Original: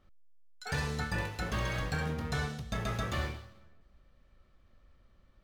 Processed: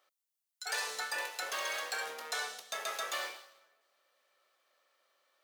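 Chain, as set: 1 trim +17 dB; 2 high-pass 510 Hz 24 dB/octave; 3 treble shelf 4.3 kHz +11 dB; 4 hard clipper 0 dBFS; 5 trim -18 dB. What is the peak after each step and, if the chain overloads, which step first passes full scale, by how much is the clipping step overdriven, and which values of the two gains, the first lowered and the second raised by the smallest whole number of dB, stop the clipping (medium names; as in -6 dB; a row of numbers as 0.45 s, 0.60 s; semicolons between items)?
-4.5 dBFS, -7.5 dBFS, -4.5 dBFS, -4.5 dBFS, -22.5 dBFS; nothing clips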